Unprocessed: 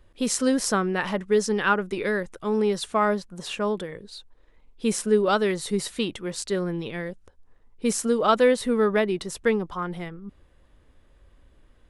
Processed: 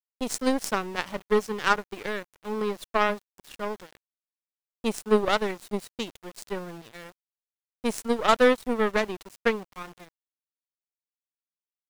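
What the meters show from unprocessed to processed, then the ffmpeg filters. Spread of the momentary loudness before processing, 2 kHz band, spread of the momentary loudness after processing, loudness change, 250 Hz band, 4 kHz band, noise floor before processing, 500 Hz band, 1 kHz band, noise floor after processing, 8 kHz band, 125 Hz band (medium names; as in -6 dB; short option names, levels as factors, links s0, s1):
13 LU, -1.0 dB, 16 LU, -2.5 dB, -5.0 dB, -2.0 dB, -58 dBFS, -3.5 dB, -1.0 dB, under -85 dBFS, -8.0 dB, -8.0 dB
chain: -af "aeval=exprs='val(0)*gte(abs(val(0)),0.0316)':c=same,aeval=exprs='0.501*(cos(1*acos(clip(val(0)/0.501,-1,1)))-cos(1*PI/2))+0.0316*(cos(6*acos(clip(val(0)/0.501,-1,1)))-cos(6*PI/2))+0.0562*(cos(7*acos(clip(val(0)/0.501,-1,1)))-cos(7*PI/2))':c=same"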